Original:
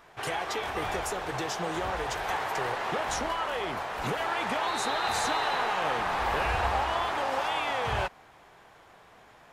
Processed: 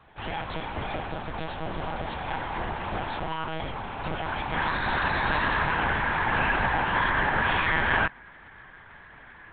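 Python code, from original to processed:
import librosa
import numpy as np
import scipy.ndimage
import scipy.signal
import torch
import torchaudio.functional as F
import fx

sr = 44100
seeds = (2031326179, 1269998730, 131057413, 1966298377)

y = fx.peak_eq(x, sr, hz=1700.0, db=fx.steps((0.0, -2.0), (4.55, 9.0), (6.95, 15.0)), octaves=0.69)
y = fx.lpc_monotone(y, sr, seeds[0], pitch_hz=160.0, order=8)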